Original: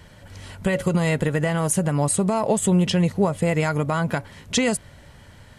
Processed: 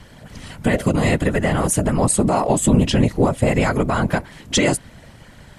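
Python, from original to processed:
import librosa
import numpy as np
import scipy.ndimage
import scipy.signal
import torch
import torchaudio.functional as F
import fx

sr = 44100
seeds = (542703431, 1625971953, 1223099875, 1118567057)

y = fx.whisperise(x, sr, seeds[0])
y = F.gain(torch.from_numpy(y), 3.5).numpy()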